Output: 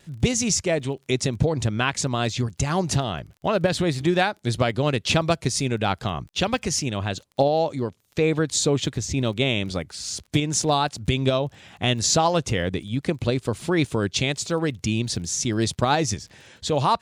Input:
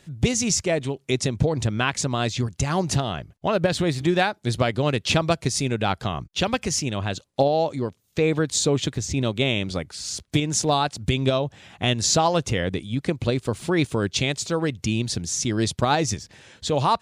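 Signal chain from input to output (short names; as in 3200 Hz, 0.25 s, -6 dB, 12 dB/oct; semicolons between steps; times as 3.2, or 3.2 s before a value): crackle 21/s -38 dBFS; vibrato 0.85 Hz 9.9 cents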